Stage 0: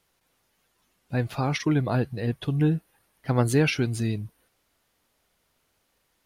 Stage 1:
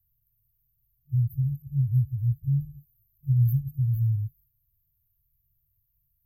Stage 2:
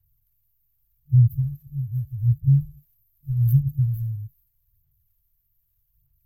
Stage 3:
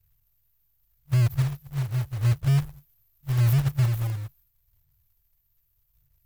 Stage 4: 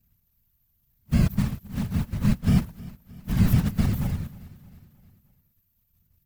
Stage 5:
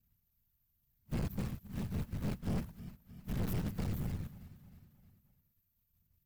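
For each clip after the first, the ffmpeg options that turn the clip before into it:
-filter_complex "[0:a]acrossover=split=170|3000[s0][s1][s2];[s1]acompressor=threshold=0.0282:ratio=6[s3];[s0][s3][s2]amix=inputs=3:normalize=0,afftfilt=real='re*(1-between(b*sr/4096,140,12000))':imag='im*(1-between(b*sr/4096,140,12000))':win_size=4096:overlap=0.75,volume=2"
-af "aphaser=in_gain=1:out_gain=1:delay=4.7:decay=0.65:speed=0.82:type=sinusoidal"
-af "alimiter=limit=0.178:level=0:latency=1:release=23,acrusher=bits=3:mode=log:mix=0:aa=0.000001"
-af "afftfilt=real='hypot(re,im)*cos(2*PI*random(0))':imag='hypot(re,im)*sin(2*PI*random(1))':win_size=512:overlap=0.75,aecho=1:1:311|622|933|1244:0.1|0.053|0.0281|0.0149,volume=2.11"
-af "aeval=exprs='(tanh(17.8*val(0)+0.45)-tanh(0.45))/17.8':c=same,volume=0.447"

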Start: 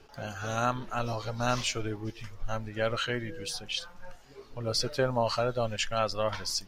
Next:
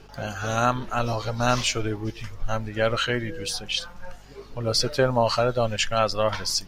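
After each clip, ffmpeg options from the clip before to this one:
-af "aeval=exprs='val(0)+0.00141*(sin(2*PI*50*n/s)+sin(2*PI*2*50*n/s)/2+sin(2*PI*3*50*n/s)/3+sin(2*PI*4*50*n/s)/4+sin(2*PI*5*50*n/s)/5)':c=same,volume=2.11"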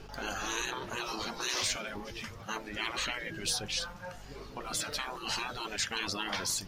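-af "afftfilt=real='re*lt(hypot(re,im),0.1)':imag='im*lt(hypot(re,im),0.1)':win_size=1024:overlap=0.75"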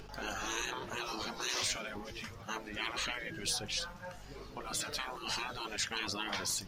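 -af "acompressor=mode=upward:threshold=0.00501:ratio=2.5,volume=0.75"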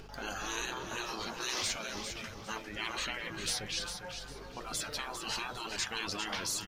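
-af "aecho=1:1:402|804|1206:0.398|0.104|0.0269"

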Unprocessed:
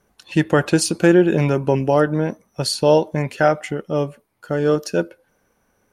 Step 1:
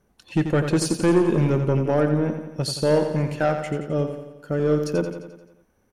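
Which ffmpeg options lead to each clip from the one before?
-af "lowshelf=f=470:g=7.5,asoftclip=type=tanh:threshold=0.501,aecho=1:1:87|174|261|348|435|522|609:0.398|0.227|0.129|0.0737|0.042|0.024|0.0137,volume=0.473"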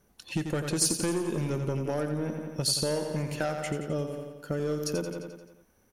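-filter_complex "[0:a]highshelf=f=3700:g=9.5,acrossover=split=5400[s0][s1];[s0]acompressor=threshold=0.0501:ratio=6[s2];[s1]equalizer=f=7900:t=o:w=0.42:g=-3.5[s3];[s2][s3]amix=inputs=2:normalize=0,volume=0.841"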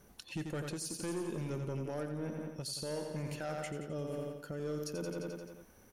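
-af "areverse,acompressor=threshold=0.0158:ratio=6,areverse,alimiter=level_in=3.76:limit=0.0631:level=0:latency=1:release=411,volume=0.266,volume=1.78"

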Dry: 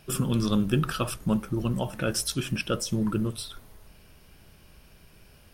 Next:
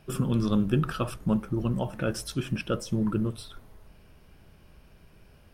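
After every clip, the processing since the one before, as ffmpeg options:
-af "highshelf=f=2700:g=-10"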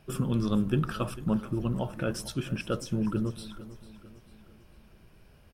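-af "aecho=1:1:447|894|1341|1788:0.15|0.0688|0.0317|0.0146,volume=0.794"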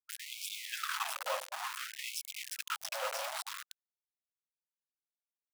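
-filter_complex "[0:a]asplit=6[s0][s1][s2][s3][s4][s5];[s1]adelay=324,afreqshift=-35,volume=0.631[s6];[s2]adelay=648,afreqshift=-70,volume=0.24[s7];[s3]adelay=972,afreqshift=-105,volume=0.0912[s8];[s4]adelay=1296,afreqshift=-140,volume=0.0347[s9];[s5]adelay=1620,afreqshift=-175,volume=0.0132[s10];[s0][s6][s7][s8][s9][s10]amix=inputs=6:normalize=0,aeval=exprs='val(0)*gte(abs(val(0)),0.0376)':c=same,afftfilt=real='re*gte(b*sr/1024,490*pow(2200/490,0.5+0.5*sin(2*PI*0.56*pts/sr)))':imag='im*gte(b*sr/1024,490*pow(2200/490,0.5+0.5*sin(2*PI*0.56*pts/sr)))':win_size=1024:overlap=0.75"

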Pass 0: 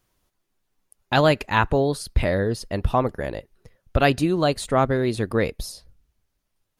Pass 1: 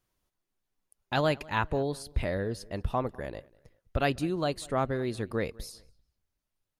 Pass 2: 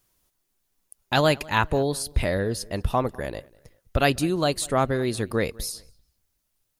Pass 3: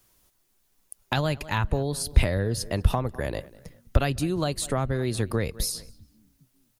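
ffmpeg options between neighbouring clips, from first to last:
-filter_complex "[0:a]asplit=2[s0][s1];[s1]adelay=197,lowpass=f=3400:p=1,volume=0.0668,asplit=2[s2][s3];[s3]adelay=197,lowpass=f=3400:p=1,volume=0.36[s4];[s0][s2][s4]amix=inputs=3:normalize=0,volume=0.355"
-af "highshelf=f=5100:g=10.5,volume=2"
-filter_complex "[0:a]acrossover=split=130[s0][s1];[s0]asplit=4[s2][s3][s4][s5];[s3]adelay=400,afreqshift=54,volume=0.0708[s6];[s4]adelay=800,afreqshift=108,volume=0.0282[s7];[s5]adelay=1200,afreqshift=162,volume=0.0114[s8];[s2][s6][s7][s8]amix=inputs=4:normalize=0[s9];[s1]acompressor=threshold=0.0282:ratio=6[s10];[s9][s10]amix=inputs=2:normalize=0,volume=1.88"

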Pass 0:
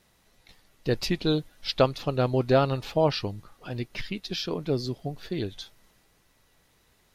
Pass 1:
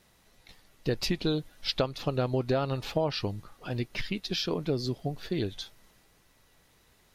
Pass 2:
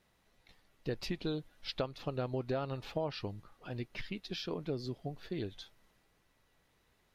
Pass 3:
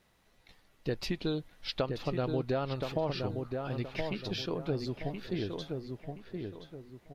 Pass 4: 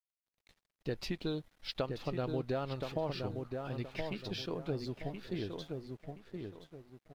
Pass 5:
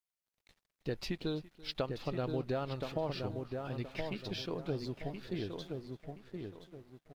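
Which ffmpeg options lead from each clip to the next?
-af "acompressor=threshold=0.0562:ratio=6,volume=1.12"
-af "bass=f=250:g=-1,treble=f=4000:g=-6,volume=0.422"
-filter_complex "[0:a]asplit=2[s0][s1];[s1]adelay=1023,lowpass=f=1900:p=1,volume=0.596,asplit=2[s2][s3];[s3]adelay=1023,lowpass=f=1900:p=1,volume=0.35,asplit=2[s4][s5];[s5]adelay=1023,lowpass=f=1900:p=1,volume=0.35,asplit=2[s6][s7];[s7]adelay=1023,lowpass=f=1900:p=1,volume=0.35[s8];[s0][s2][s4][s6][s8]amix=inputs=5:normalize=0,volume=1.5"
-af "aeval=exprs='sgn(val(0))*max(abs(val(0))-0.00112,0)':c=same,volume=0.668"
-af "aecho=1:1:336:0.0944"

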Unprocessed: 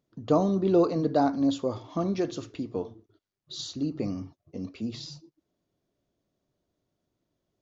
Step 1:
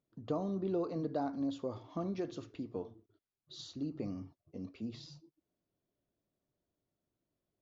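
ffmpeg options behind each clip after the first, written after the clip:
-af "lowpass=f=3700:p=1,acompressor=threshold=0.0562:ratio=2.5,volume=0.398"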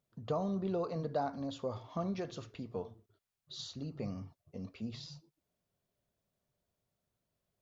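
-af "equalizer=f=310:t=o:w=0.5:g=-14,volume=1.58"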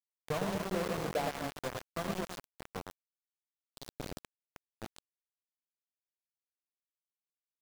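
-filter_complex "[0:a]aeval=exprs='val(0)+0.000355*(sin(2*PI*60*n/s)+sin(2*PI*2*60*n/s)/2+sin(2*PI*3*60*n/s)/3+sin(2*PI*4*60*n/s)/4+sin(2*PI*5*60*n/s)/5)':c=same,asplit=2[s0][s1];[s1]aecho=0:1:110|242|400.4|590.5|818.6:0.631|0.398|0.251|0.158|0.1[s2];[s0][s2]amix=inputs=2:normalize=0,aeval=exprs='val(0)*gte(abs(val(0)),0.0237)':c=same"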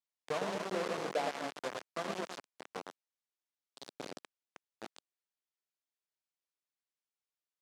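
-af "highpass=280,lowpass=7700"

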